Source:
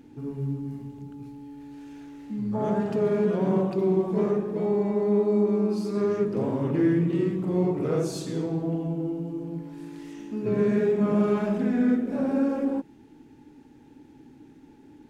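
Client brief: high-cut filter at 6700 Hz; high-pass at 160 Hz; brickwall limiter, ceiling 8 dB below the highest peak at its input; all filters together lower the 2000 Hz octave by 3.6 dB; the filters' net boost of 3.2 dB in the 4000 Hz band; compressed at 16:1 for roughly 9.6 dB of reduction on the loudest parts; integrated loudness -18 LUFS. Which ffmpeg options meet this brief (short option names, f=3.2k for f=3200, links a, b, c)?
-af "highpass=160,lowpass=6.7k,equalizer=f=2k:t=o:g=-6,equalizer=f=4k:t=o:g=6,acompressor=threshold=-28dB:ratio=16,volume=19dB,alimiter=limit=-10dB:level=0:latency=1"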